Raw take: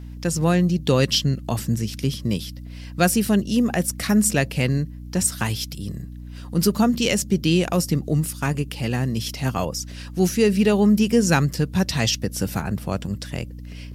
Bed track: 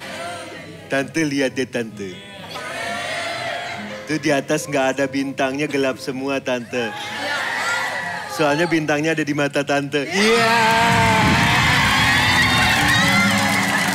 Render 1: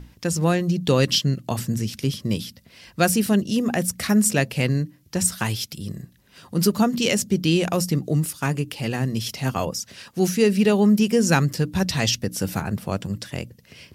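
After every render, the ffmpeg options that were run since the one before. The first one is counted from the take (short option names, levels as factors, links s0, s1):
-af "bandreject=f=60:t=h:w=6,bandreject=f=120:t=h:w=6,bandreject=f=180:t=h:w=6,bandreject=f=240:t=h:w=6,bandreject=f=300:t=h:w=6"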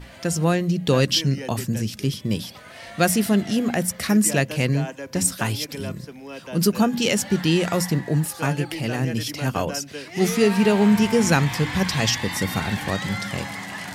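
-filter_complex "[1:a]volume=0.178[s0];[0:a][s0]amix=inputs=2:normalize=0"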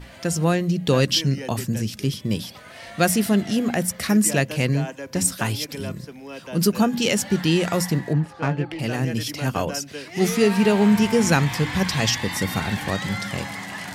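-filter_complex "[0:a]asettb=1/sr,asplit=3[s0][s1][s2];[s0]atrim=end=8.134[s3];[s1]atrim=start=8.13:end=8.79,asetpts=PTS-STARTPTS,afade=t=in:d=0.004:c=qsin,afade=t=out:st=0.656:d=0.004:c=qsin,adynamicsmooth=sensitivity=1:basefreq=2000[s4];[s2]atrim=start=8.786[s5];[s3][s4]acrossfade=d=0.004:c1=hsin:c2=qsin[s6];[s6][s5]acrossfade=d=0.004:c1=qsin:c2=hsin"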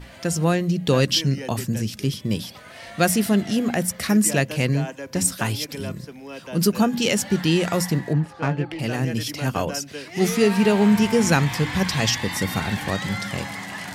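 -af anull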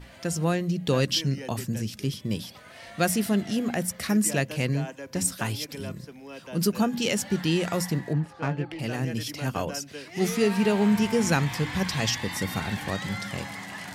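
-af "volume=0.562"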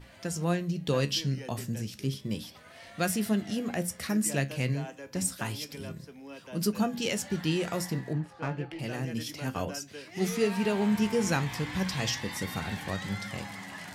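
-af "flanger=delay=9.1:depth=7.9:regen=68:speed=0.3:shape=triangular"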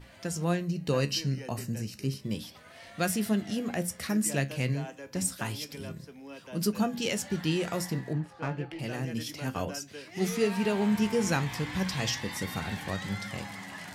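-filter_complex "[0:a]asettb=1/sr,asplit=3[s0][s1][s2];[s0]atrim=end=0.644[s3];[s1]atrim=start=0.64:end=2.24,asetpts=PTS-STARTPTS,afade=t=in:d=0.004:c=qsin,afade=t=out:st=1.596:d=0.004:c=qsin,asuperstop=centerf=3400:order=4:qfactor=5.9[s4];[s2]atrim=start=2.236[s5];[s3][s4]acrossfade=d=0.004:c1=hsin:c2=qsin[s6];[s6][s5]acrossfade=d=0.004:c1=qsin:c2=hsin"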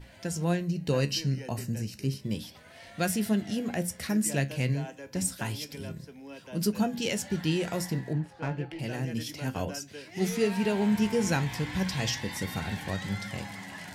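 -af "lowshelf=f=120:g=4,bandreject=f=1200:w=7.5"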